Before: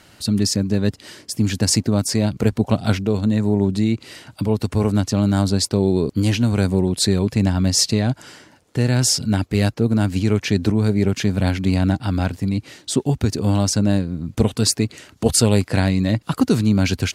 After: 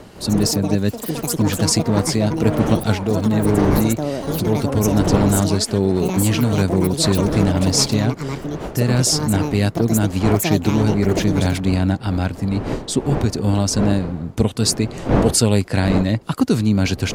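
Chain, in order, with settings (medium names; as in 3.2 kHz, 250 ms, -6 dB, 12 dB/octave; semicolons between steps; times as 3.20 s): wind noise 420 Hz -28 dBFS; ever faster or slower copies 157 ms, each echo +7 st, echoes 2, each echo -6 dB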